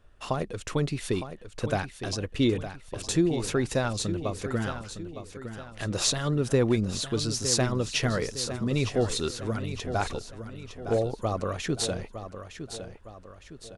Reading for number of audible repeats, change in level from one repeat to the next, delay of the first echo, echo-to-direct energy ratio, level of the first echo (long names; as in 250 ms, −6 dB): 3, −7.0 dB, 910 ms, −9.5 dB, −10.5 dB